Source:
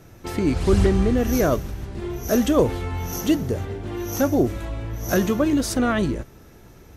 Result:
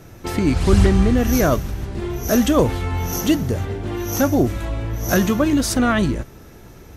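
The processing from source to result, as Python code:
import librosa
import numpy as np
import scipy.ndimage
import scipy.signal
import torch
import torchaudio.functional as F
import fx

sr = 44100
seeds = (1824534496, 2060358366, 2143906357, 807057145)

y = fx.dynamic_eq(x, sr, hz=430.0, q=1.3, threshold_db=-32.0, ratio=4.0, max_db=-5)
y = F.gain(torch.from_numpy(y), 5.0).numpy()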